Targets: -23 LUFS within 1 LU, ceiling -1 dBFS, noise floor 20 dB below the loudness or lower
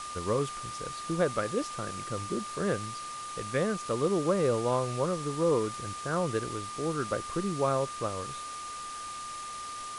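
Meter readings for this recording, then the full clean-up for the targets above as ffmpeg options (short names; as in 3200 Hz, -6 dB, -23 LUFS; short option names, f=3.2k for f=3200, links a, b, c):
steady tone 1200 Hz; tone level -38 dBFS; noise floor -40 dBFS; noise floor target -52 dBFS; loudness -31.5 LUFS; peak -15.0 dBFS; loudness target -23.0 LUFS
-> -af "bandreject=f=1.2k:w=30"
-af "afftdn=nr=12:nf=-40"
-af "volume=8.5dB"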